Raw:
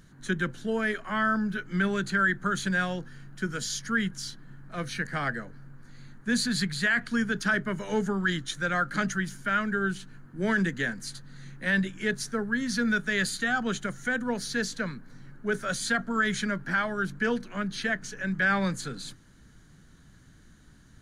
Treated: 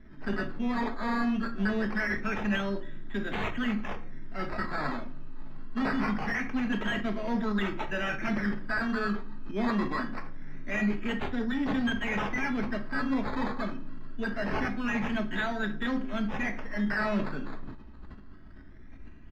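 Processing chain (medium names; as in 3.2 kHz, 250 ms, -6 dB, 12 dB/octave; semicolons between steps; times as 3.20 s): local Wiener filter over 9 samples; gate with hold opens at -48 dBFS; treble shelf 4.1 kHz +11 dB; comb 3.4 ms, depth 62%; decimation with a swept rate 13×, swing 60% 0.22 Hz; saturation -26.5 dBFS, distortion -9 dB; distance through air 310 m; simulated room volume 410 m³, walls furnished, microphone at 1.2 m; speed mistake 44.1 kHz file played as 48 kHz; decay stretcher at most 66 dB/s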